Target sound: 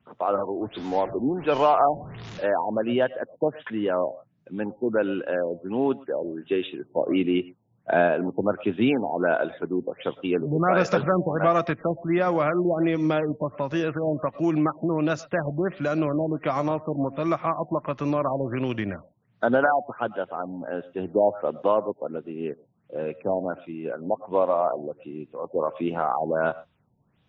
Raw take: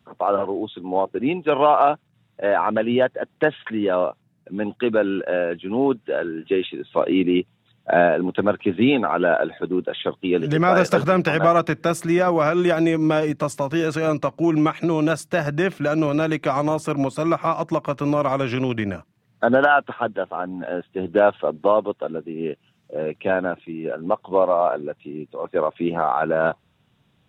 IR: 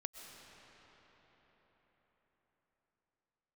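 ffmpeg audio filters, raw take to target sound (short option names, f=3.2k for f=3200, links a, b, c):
-filter_complex "[0:a]asettb=1/sr,asplit=3[a][b][c];[a]atrim=end=0.614[d];[b]atrim=start=0.61:end=2.46,asetpts=PTS-STARTPTS,afade=t=in:d=0.004:c=qsin,afade=t=out:st=1.846:d=0.004:c=qsin,aeval=exprs='val(0)+0.5*0.0355*sgn(val(0))':c=same[e];[c]atrim=start=2.456[f];[d][e]acrossfade=d=0.004:c1=hsin:c2=qsin[g];[g][f]acrossfade=d=0.004:c1=qsin:c2=hsin[h];[1:a]atrim=start_sample=2205,afade=t=out:st=0.17:d=0.01,atrim=end_sample=7938[i];[h][i]afir=irnorm=-1:irlink=0,afftfilt=real='re*lt(b*sr/1024,940*pow(7400/940,0.5+0.5*sin(2*PI*1.4*pts/sr)))':imag='im*lt(b*sr/1024,940*pow(7400/940,0.5+0.5*sin(2*PI*1.4*pts/sr)))':win_size=1024:overlap=0.75"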